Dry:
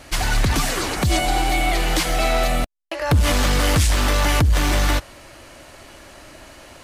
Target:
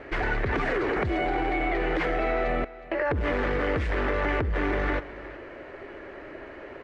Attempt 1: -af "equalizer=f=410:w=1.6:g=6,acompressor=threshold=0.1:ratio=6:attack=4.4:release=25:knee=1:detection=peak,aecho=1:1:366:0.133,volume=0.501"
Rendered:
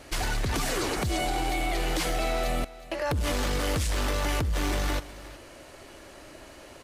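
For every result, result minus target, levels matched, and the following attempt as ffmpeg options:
500 Hz band -3.0 dB; 2 kHz band -3.0 dB
-af "equalizer=f=410:w=1.6:g=17,acompressor=threshold=0.1:ratio=6:attack=4.4:release=25:knee=1:detection=peak,aecho=1:1:366:0.133,volume=0.501"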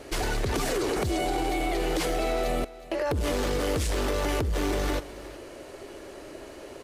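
2 kHz band -5.0 dB
-af "equalizer=f=410:w=1.6:g=17,acompressor=threshold=0.1:ratio=6:attack=4.4:release=25:knee=1:detection=peak,lowpass=f=1900:t=q:w=2.5,aecho=1:1:366:0.133,volume=0.501"

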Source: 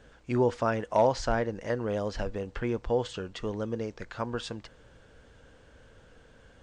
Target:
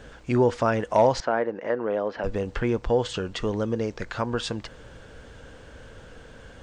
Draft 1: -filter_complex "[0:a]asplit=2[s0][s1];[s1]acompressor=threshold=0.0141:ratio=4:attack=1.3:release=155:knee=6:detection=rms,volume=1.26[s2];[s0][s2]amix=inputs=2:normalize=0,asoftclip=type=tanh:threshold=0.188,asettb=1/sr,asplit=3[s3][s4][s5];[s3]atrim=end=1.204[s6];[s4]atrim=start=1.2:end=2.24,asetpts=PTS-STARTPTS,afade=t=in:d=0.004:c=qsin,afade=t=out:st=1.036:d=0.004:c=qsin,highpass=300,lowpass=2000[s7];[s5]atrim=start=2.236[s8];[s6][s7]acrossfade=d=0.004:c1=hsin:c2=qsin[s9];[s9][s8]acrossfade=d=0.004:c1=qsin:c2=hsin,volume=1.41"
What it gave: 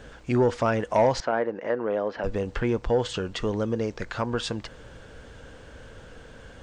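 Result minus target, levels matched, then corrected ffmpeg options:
saturation: distortion +17 dB
-filter_complex "[0:a]asplit=2[s0][s1];[s1]acompressor=threshold=0.0141:ratio=4:attack=1.3:release=155:knee=6:detection=rms,volume=1.26[s2];[s0][s2]amix=inputs=2:normalize=0,asoftclip=type=tanh:threshold=0.596,asettb=1/sr,asplit=3[s3][s4][s5];[s3]atrim=end=1.204[s6];[s4]atrim=start=1.2:end=2.24,asetpts=PTS-STARTPTS,afade=t=in:d=0.004:c=qsin,afade=t=out:st=1.036:d=0.004:c=qsin,highpass=300,lowpass=2000[s7];[s5]atrim=start=2.236[s8];[s6][s7]acrossfade=d=0.004:c1=hsin:c2=qsin[s9];[s9][s8]acrossfade=d=0.004:c1=qsin:c2=hsin,volume=1.41"

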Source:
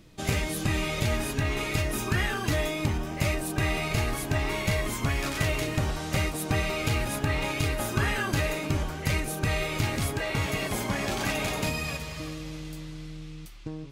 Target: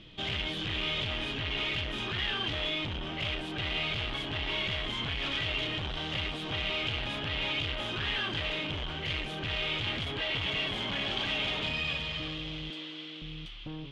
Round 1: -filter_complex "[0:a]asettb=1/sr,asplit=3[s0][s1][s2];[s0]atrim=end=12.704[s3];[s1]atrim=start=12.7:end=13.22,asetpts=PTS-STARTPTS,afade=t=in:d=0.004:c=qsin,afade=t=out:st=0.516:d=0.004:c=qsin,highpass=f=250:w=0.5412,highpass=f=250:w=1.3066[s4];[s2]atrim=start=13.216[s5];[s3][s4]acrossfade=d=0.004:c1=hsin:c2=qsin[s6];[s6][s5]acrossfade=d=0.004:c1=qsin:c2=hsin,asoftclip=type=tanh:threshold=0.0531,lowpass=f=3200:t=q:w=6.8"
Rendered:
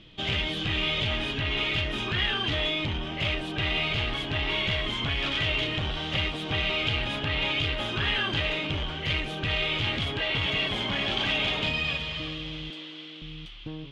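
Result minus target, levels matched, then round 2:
saturation: distortion -6 dB
-filter_complex "[0:a]asettb=1/sr,asplit=3[s0][s1][s2];[s0]atrim=end=12.704[s3];[s1]atrim=start=12.7:end=13.22,asetpts=PTS-STARTPTS,afade=t=in:d=0.004:c=qsin,afade=t=out:st=0.516:d=0.004:c=qsin,highpass=f=250:w=0.5412,highpass=f=250:w=1.3066[s4];[s2]atrim=start=13.216[s5];[s3][s4]acrossfade=d=0.004:c1=hsin:c2=qsin[s6];[s6][s5]acrossfade=d=0.004:c1=qsin:c2=hsin,asoftclip=type=tanh:threshold=0.0188,lowpass=f=3200:t=q:w=6.8"

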